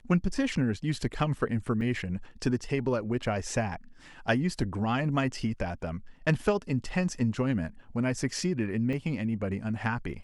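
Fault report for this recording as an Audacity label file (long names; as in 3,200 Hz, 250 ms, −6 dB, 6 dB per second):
1.810000	1.810000	drop-out 3.9 ms
8.930000	8.930000	drop-out 2 ms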